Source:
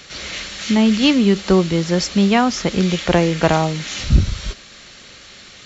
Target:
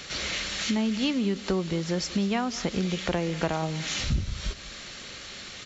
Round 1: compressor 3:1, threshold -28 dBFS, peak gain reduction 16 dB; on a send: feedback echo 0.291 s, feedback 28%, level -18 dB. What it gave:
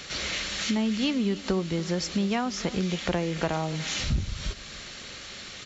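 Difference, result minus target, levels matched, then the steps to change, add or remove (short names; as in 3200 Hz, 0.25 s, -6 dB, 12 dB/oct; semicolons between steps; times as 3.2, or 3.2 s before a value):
echo 96 ms late
change: feedback echo 0.195 s, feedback 28%, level -18 dB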